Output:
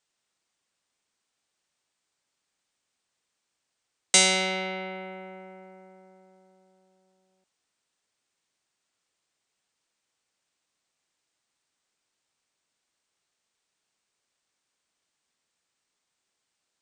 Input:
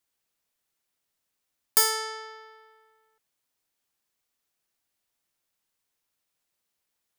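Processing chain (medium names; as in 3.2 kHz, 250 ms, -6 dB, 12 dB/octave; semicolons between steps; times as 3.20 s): bass shelf 200 Hz -9.5 dB; speed mistake 78 rpm record played at 33 rpm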